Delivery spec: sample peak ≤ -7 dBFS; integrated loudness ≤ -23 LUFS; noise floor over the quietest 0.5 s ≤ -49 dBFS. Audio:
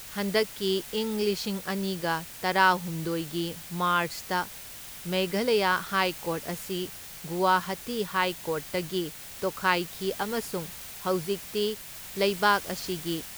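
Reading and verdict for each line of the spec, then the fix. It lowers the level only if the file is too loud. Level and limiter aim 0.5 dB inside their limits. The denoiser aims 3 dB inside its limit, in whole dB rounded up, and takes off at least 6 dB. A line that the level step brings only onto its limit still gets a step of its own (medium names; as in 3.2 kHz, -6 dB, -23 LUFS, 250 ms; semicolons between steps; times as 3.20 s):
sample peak -8.0 dBFS: pass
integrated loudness -28.5 LUFS: pass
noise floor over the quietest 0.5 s -43 dBFS: fail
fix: noise reduction 9 dB, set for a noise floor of -43 dBFS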